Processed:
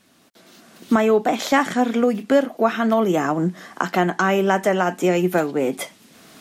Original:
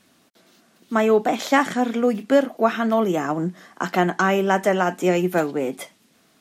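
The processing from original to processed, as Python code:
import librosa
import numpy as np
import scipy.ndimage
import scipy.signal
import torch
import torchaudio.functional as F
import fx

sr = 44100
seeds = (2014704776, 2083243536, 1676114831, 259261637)

y = fx.recorder_agc(x, sr, target_db=-9.5, rise_db_per_s=14.0, max_gain_db=30)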